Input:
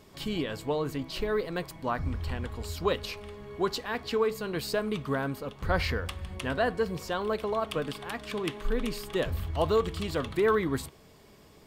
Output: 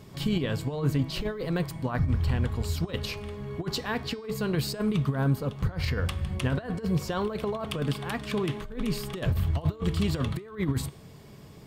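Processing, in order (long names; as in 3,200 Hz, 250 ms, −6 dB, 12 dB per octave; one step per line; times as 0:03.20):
compressor whose output falls as the input rises −31 dBFS, ratio −0.5
parametric band 130 Hz +11.5 dB 1.3 octaves
hum removal 308.7 Hz, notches 30
0:05.14–0:05.88: dynamic equaliser 2,300 Hz, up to −5 dB, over −46 dBFS, Q 1.3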